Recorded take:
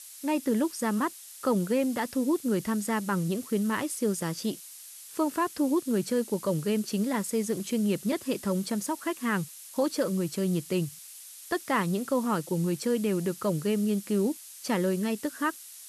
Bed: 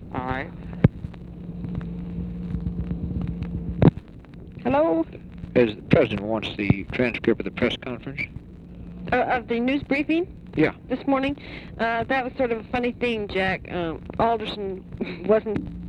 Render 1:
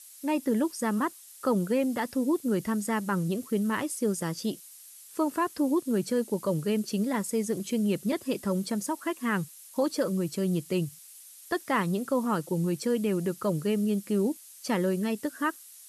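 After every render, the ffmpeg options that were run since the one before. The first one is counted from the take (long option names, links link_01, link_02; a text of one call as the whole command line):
ffmpeg -i in.wav -af "afftdn=noise_reduction=6:noise_floor=-47" out.wav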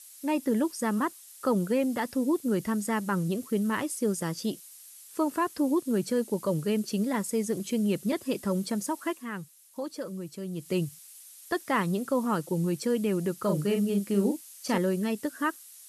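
ffmpeg -i in.wav -filter_complex "[0:a]asettb=1/sr,asplit=3[link_01][link_02][link_03];[link_01]atrim=end=13.384[link_04];[link_02]atrim=start=13.38:end=14.78,asetpts=PTS-STARTPTS,afade=type=in:duration=0.004:curve=qsin,afade=type=out:start_time=1.396:duration=0.004:curve=qsin,asplit=2[link_05][link_06];[link_06]adelay=40,volume=-5dB[link_07];[link_05][link_07]amix=inputs=2:normalize=0,atrim=end_sample=61740[link_08];[link_03]atrim=start=14.776[link_09];[link_04][link_08]acrossfade=duration=0.004:curve1=hsin:curve2=qsin[link_10];[link_10][link_09]acrossfade=duration=0.004:curve1=qsin:curve2=hsin,asplit=3[link_11][link_12][link_13];[link_11]atrim=end=9.25,asetpts=PTS-STARTPTS,afade=type=out:start_time=9.1:duration=0.15:silence=0.375837[link_14];[link_12]atrim=start=9.25:end=10.55,asetpts=PTS-STARTPTS,volume=-8.5dB[link_15];[link_13]atrim=start=10.55,asetpts=PTS-STARTPTS,afade=type=in:duration=0.15:silence=0.375837[link_16];[link_14][link_15][link_16]concat=n=3:v=0:a=1" out.wav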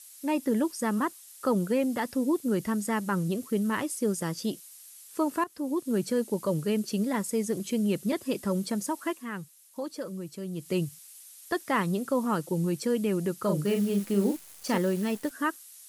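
ffmpeg -i in.wav -filter_complex "[0:a]asettb=1/sr,asplit=3[link_01][link_02][link_03];[link_01]atrim=end=13.654[link_04];[link_02]atrim=start=13.65:end=15.31,asetpts=PTS-STARTPTS,afade=type=in:duration=0.004:curve=qsin,afade=type=out:start_time=1.656:duration=0.004:curve=qsin,acrusher=bits=8:dc=4:mix=0:aa=0.000001[link_05];[link_03]atrim=start=15.306[link_06];[link_04][link_05]acrossfade=duration=0.004:curve1=hsin:curve2=qsin[link_07];[link_07][link_06]acrossfade=duration=0.004:curve1=qsin:curve2=hsin,asplit=2[link_08][link_09];[link_08]atrim=end=5.44,asetpts=PTS-STARTPTS,afade=type=out:start_time=5.436:duration=0.004:curve=hsin:silence=0.211349[link_10];[link_09]atrim=start=5.44,asetpts=PTS-STARTPTS,afade=type=in:duration=0.53:silence=0.211349[link_11];[link_10][link_11]concat=n=2:v=0:a=1" out.wav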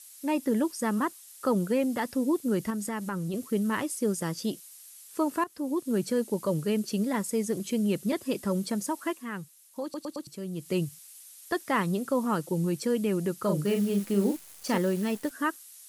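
ffmpeg -i in.wav -filter_complex "[0:a]asettb=1/sr,asplit=3[link_01][link_02][link_03];[link_01]atrim=end=2.704[link_04];[link_02]atrim=start=2.7:end=3.34,asetpts=PTS-STARTPTS,afade=type=in:duration=0.004:curve=qsin,afade=type=out:start_time=0.636:duration=0.004:curve=qsin,acompressor=threshold=-29dB:ratio=4:attack=3.2:release=140:knee=1:detection=peak[link_05];[link_03]atrim=start=3.336[link_06];[link_04][link_05]acrossfade=duration=0.004:curve1=hsin:curve2=qsin[link_07];[link_07][link_06]acrossfade=duration=0.004:curve1=qsin:curve2=hsin,asplit=5[link_08][link_09][link_10][link_11][link_12];[link_08]atrim=end=9.942[link_13];[link_09]atrim=start=9.828:end=9.942[link_14];[link_10]atrim=start=9.828:end=9.942[link_15];[link_11]atrim=start=9.828:end=9.942[link_16];[link_12]atrim=start=10.268[link_17];[link_13][link_14]acrossfade=duration=0.004:curve1=hsin:curve2=hsin[link_18];[link_18][link_15]acrossfade=duration=0.004:curve1=hsin:curve2=hsin[link_19];[link_19][link_16]acrossfade=duration=0.004:curve1=hsin:curve2=hsin[link_20];[link_20][link_17]acrossfade=duration=0.004:curve1=hsin:curve2=hsin" out.wav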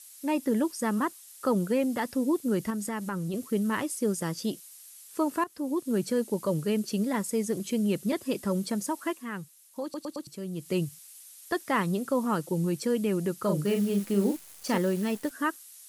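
ffmpeg -i in.wav -af anull out.wav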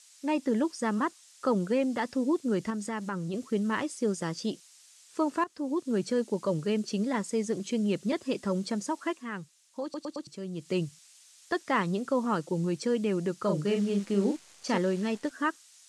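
ffmpeg -i in.wav -af "lowpass=frequency=7600:width=0.5412,lowpass=frequency=7600:width=1.3066,lowshelf=frequency=120:gain=-6.5" out.wav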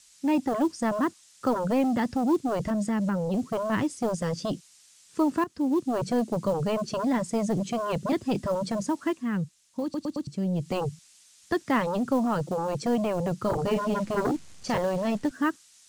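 ffmpeg -i in.wav -filter_complex "[0:a]acrossover=split=210|3200[link_01][link_02][link_03];[link_01]aeval=exprs='0.0531*sin(PI/2*5.62*val(0)/0.0531)':channel_layout=same[link_04];[link_02]acrusher=bits=6:mode=log:mix=0:aa=0.000001[link_05];[link_04][link_05][link_03]amix=inputs=3:normalize=0" out.wav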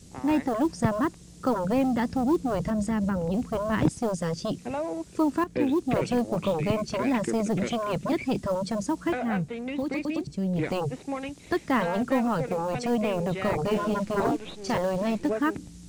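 ffmpeg -i in.wav -i bed.wav -filter_complex "[1:a]volume=-11dB[link_01];[0:a][link_01]amix=inputs=2:normalize=0" out.wav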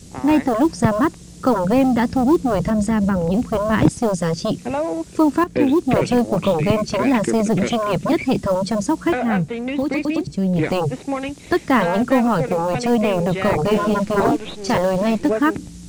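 ffmpeg -i in.wav -af "volume=8.5dB,alimiter=limit=-2dB:level=0:latency=1" out.wav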